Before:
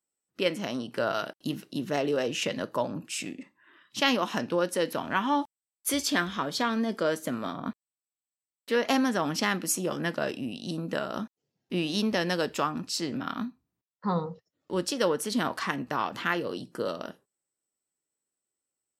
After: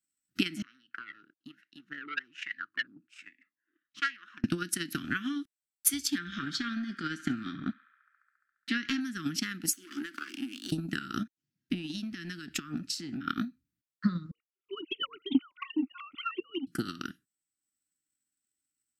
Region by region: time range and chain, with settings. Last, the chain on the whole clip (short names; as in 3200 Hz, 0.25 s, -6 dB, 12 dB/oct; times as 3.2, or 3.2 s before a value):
0.62–4.44 notches 50/100 Hz + wah 1.2 Hz 460–1900 Hz, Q 5.4 + core saturation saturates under 1600 Hz
6.18–9.01 LPF 5400 Hz + transient shaper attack -6 dB, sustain +1 dB + narrowing echo 69 ms, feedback 81%, band-pass 1700 Hz, level -12 dB
9.73–10.72 minimum comb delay 0.63 ms + steep high-pass 260 Hz + compressor, threshold -35 dBFS
11.23–13.28 high shelf 4000 Hz -5.5 dB + compressor 5:1, threshold -34 dBFS
14.31–16.67 sine-wave speech + Butterworth band-stop 1700 Hz, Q 2.1
whole clip: elliptic band-stop 310–1400 Hz, stop band 40 dB; compressor 6:1, threshold -33 dBFS; transient shaper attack +12 dB, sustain -3 dB